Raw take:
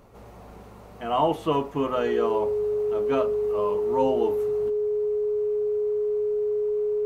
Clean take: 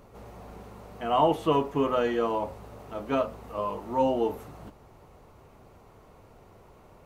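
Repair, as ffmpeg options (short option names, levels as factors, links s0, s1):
-af "bandreject=f=420:w=30"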